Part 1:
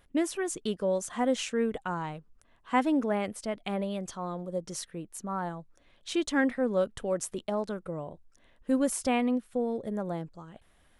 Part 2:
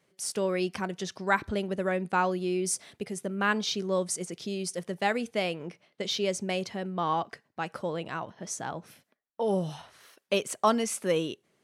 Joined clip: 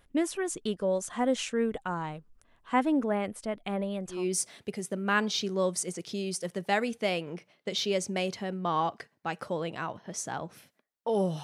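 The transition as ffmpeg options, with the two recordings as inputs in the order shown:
-filter_complex "[0:a]asettb=1/sr,asplit=3[a][b][c];[a]atrim=end=2.744[d];[b]atrim=start=2.74:end=4.26,asetpts=PTS-STARTPTS,afade=t=in:d=0.004:c=qsin,afade=t=out:st=1.516:d=0.004:c=qsin,equalizer=f=5.6k:t=o:w=1.4:g=-4.5[e];[c]atrim=start=4.256[f];[d][e]acrossfade=d=0.004:c1=hsin:c2=qsin[g];[g][f]acrossfade=d=0.004:c1=qsin:c2=hsin,apad=whole_dur=11.43,atrim=end=11.43,atrim=end=4.26,asetpts=PTS-STARTPTS[h];[1:a]atrim=start=2.41:end=9.76,asetpts=PTS-STARTPTS[i];[h][i]acrossfade=d=0.18:c1=tri:c2=tri"

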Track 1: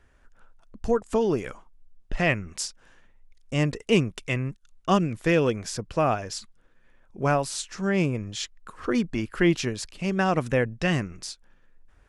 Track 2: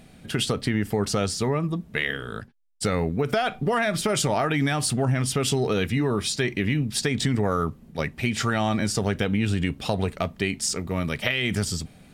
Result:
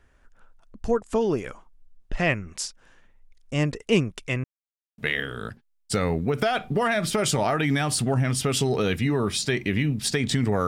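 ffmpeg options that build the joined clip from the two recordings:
-filter_complex "[0:a]apad=whole_dur=10.67,atrim=end=10.67,asplit=2[a][b];[a]atrim=end=4.44,asetpts=PTS-STARTPTS,afade=t=out:st=4.436:d=0.004:c=hsin[c];[b]atrim=start=4.44:end=4.98,asetpts=PTS-STARTPTS,volume=0[d];[1:a]atrim=start=1.89:end=7.58,asetpts=PTS-STARTPTS,afade=t=in:d=0.004:c=hsin[e];[c][d][e]concat=n=3:v=0:a=1"

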